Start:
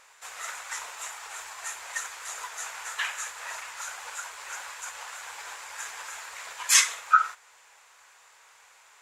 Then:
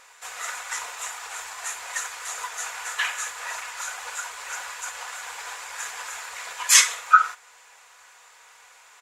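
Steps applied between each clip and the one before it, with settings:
comb filter 4.1 ms, depth 31%
level +4 dB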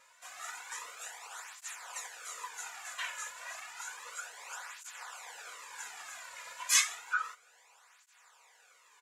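through-zero flanger with one copy inverted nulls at 0.31 Hz, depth 2.7 ms
level −8 dB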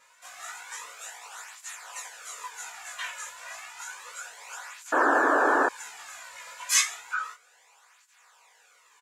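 double-tracking delay 18 ms −2 dB
sound drawn into the spectrogram noise, 0:04.92–0:05.69, 250–1,800 Hz −23 dBFS
level +1 dB

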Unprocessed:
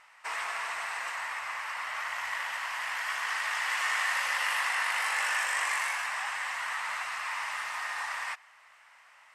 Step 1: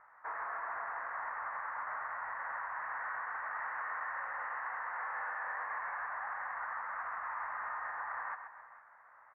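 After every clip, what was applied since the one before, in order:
Butterworth low-pass 1,700 Hz 48 dB per octave
brickwall limiter −32 dBFS, peak gain reduction 11.5 dB
on a send: multi-tap delay 132/270/454 ms −9.5/−16.5/−16.5 dB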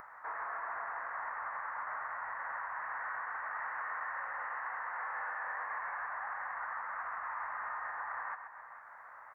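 upward compression, threshold −43 dBFS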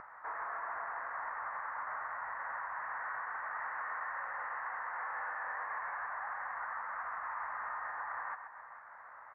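high-frequency loss of the air 230 metres
level +1 dB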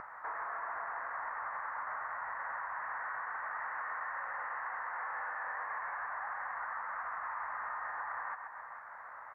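downward compressor 2 to 1, threshold −43 dBFS, peak gain reduction 4 dB
level +4 dB

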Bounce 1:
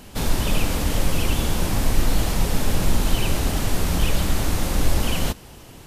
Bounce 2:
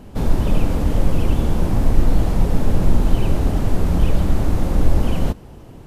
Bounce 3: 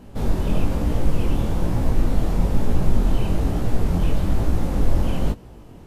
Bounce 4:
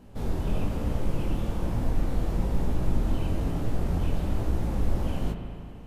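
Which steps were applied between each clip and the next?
tilt shelving filter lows +8.5 dB, about 1,400 Hz; level −3.5 dB
chorus effect 1.1 Hz, delay 16.5 ms, depth 7.7 ms
convolution reverb RT60 2.5 s, pre-delay 36 ms, DRR 4.5 dB; level −7.5 dB

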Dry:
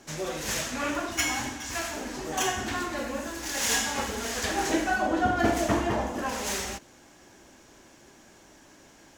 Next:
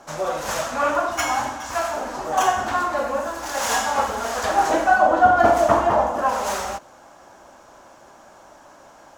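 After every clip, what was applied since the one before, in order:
flat-topped bell 870 Hz +12.5 dB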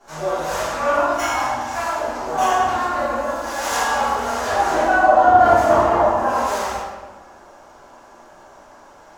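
convolution reverb RT60 1.2 s, pre-delay 3 ms, DRR −15.5 dB
level −13.5 dB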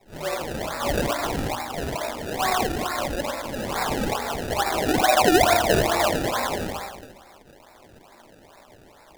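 sample-and-hold swept by an LFO 28×, swing 100% 2.3 Hz
level −5.5 dB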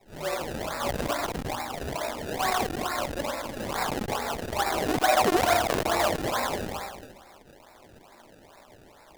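saturating transformer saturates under 730 Hz
level −2 dB

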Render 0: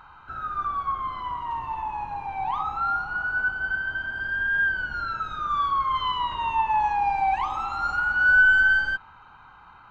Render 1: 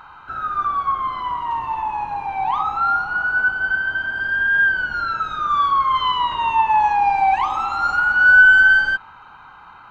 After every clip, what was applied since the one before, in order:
low-shelf EQ 130 Hz −8.5 dB
level +7 dB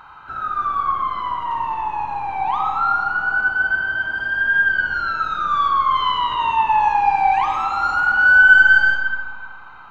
convolution reverb RT60 1.8 s, pre-delay 40 ms, DRR 4 dB
level −1 dB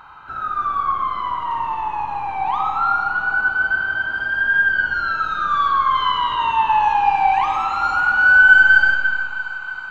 feedback echo with a high-pass in the loop 316 ms, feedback 78%, high-pass 690 Hz, level −14 dB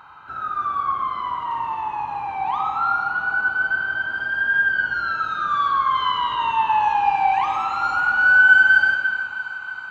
high-pass filter 71 Hz
level −2.5 dB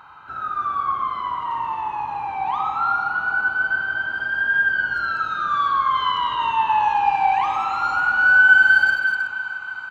far-end echo of a speakerphone 370 ms, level −15 dB

